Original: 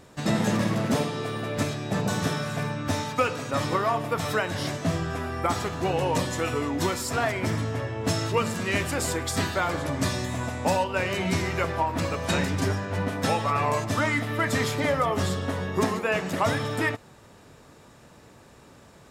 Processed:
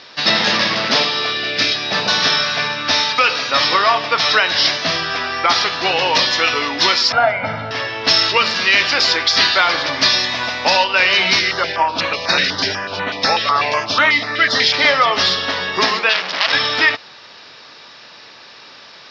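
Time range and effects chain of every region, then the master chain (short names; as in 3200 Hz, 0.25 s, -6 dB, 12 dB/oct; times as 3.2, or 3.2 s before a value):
1.33–1.75 bell 970 Hz -11.5 dB 0.74 oct + doubler 30 ms -6 dB
7.12–7.71 LPF 1200 Hz + comb 1.4 ms, depth 96%
11.39–14.74 high shelf 9800 Hz -7 dB + stepped notch 8.1 Hz 920–5000 Hz
16.09–16.53 notches 50/100/150/200/250/300/350/400 Hz + core saturation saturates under 3000 Hz
whole clip: steep low-pass 5300 Hz 72 dB/oct; differentiator; maximiser +29 dB; gain -1 dB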